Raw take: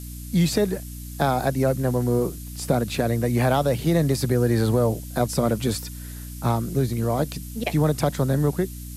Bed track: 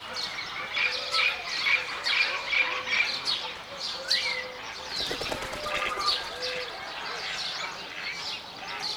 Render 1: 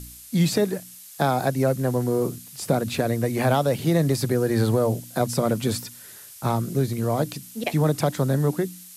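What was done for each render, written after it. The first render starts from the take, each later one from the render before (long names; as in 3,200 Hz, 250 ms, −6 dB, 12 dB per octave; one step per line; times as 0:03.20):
hum removal 60 Hz, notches 5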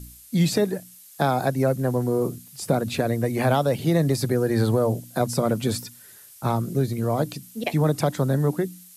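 broadband denoise 6 dB, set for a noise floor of −44 dBFS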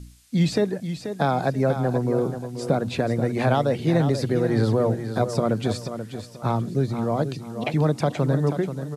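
high-frequency loss of the air 74 metres
repeating echo 484 ms, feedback 30%, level −9.5 dB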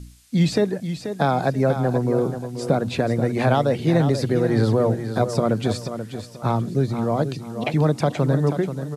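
level +2 dB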